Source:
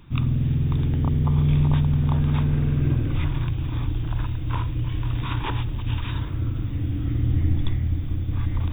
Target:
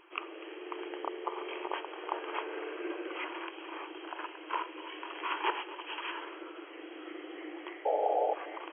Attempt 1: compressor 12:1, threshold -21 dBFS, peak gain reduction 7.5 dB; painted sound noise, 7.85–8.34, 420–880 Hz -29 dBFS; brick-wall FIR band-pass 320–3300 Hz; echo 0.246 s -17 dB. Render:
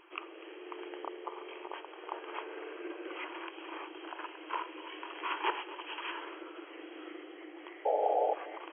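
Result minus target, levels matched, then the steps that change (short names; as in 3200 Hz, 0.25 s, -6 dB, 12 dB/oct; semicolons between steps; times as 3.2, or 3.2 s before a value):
compressor: peak gain reduction +7.5 dB
remove: compressor 12:1, threshold -21 dBFS, peak gain reduction 7.5 dB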